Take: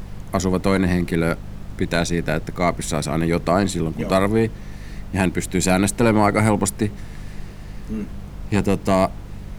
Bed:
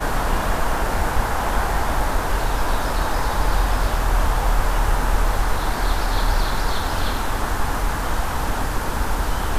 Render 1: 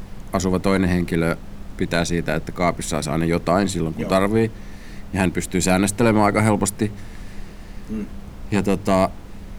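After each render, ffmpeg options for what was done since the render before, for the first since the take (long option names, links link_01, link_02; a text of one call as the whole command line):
ffmpeg -i in.wav -af "bandreject=frequency=50:width_type=h:width=4,bandreject=frequency=100:width_type=h:width=4,bandreject=frequency=150:width_type=h:width=4" out.wav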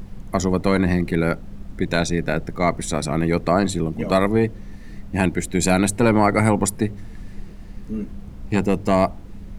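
ffmpeg -i in.wav -af "afftdn=noise_reduction=8:noise_floor=-37" out.wav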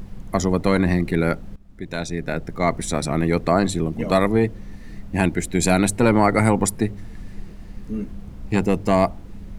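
ffmpeg -i in.wav -filter_complex "[0:a]asplit=2[link_01][link_02];[link_01]atrim=end=1.56,asetpts=PTS-STARTPTS,afade=type=out:start_time=1.556:duration=0.004:curve=hsin:silence=0.133352[link_03];[link_02]atrim=start=1.56,asetpts=PTS-STARTPTS,afade=type=in:duration=1.21:silence=0.133352[link_04];[link_03][link_04]concat=n=2:v=0:a=1" out.wav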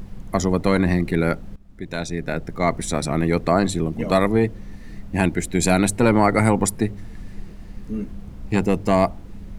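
ffmpeg -i in.wav -af anull out.wav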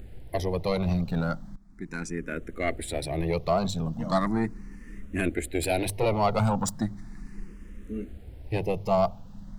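ffmpeg -i in.wav -filter_complex "[0:a]aeval=exprs='(tanh(2.51*val(0)+0.65)-tanh(0.65))/2.51':channel_layout=same,asplit=2[link_01][link_02];[link_02]afreqshift=0.37[link_03];[link_01][link_03]amix=inputs=2:normalize=1" out.wav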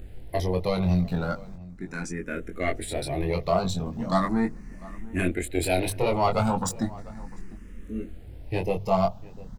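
ffmpeg -i in.wav -filter_complex "[0:a]asplit=2[link_01][link_02];[link_02]adelay=22,volume=-4.5dB[link_03];[link_01][link_03]amix=inputs=2:normalize=0,asplit=2[link_04][link_05];[link_05]adelay=699.7,volume=-20dB,highshelf=frequency=4000:gain=-15.7[link_06];[link_04][link_06]amix=inputs=2:normalize=0" out.wav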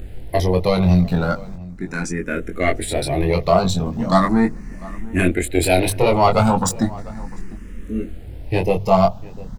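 ffmpeg -i in.wav -af "volume=8.5dB" out.wav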